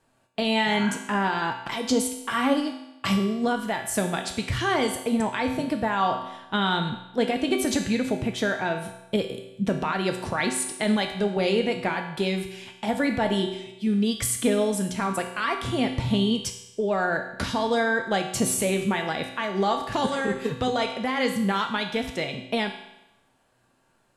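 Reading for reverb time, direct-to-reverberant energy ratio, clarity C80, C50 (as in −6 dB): 0.95 s, 3.0 dB, 9.5 dB, 7.0 dB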